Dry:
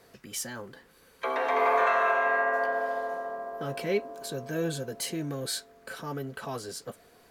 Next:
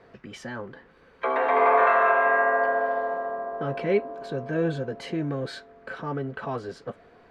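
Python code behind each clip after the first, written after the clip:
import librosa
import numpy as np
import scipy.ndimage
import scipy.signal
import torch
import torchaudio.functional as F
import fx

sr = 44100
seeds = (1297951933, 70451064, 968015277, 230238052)

y = scipy.signal.sosfilt(scipy.signal.butter(2, 2200.0, 'lowpass', fs=sr, output='sos'), x)
y = y * 10.0 ** (5.0 / 20.0)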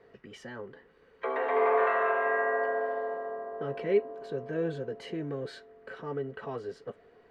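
y = fx.small_body(x, sr, hz=(430.0, 1900.0, 2900.0), ring_ms=35, db=9)
y = y * 10.0 ** (-8.5 / 20.0)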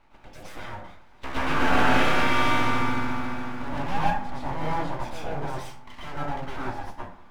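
y = np.abs(x)
y = fx.rev_plate(y, sr, seeds[0], rt60_s=0.54, hf_ratio=0.55, predelay_ms=100, drr_db=-7.5)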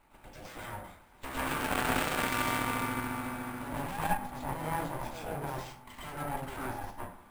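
y = np.repeat(x[::4], 4)[:len(x)]
y = fx.tube_stage(y, sr, drive_db=18.0, bias=0.65)
y = y * 10.0 ** (1.0 / 20.0)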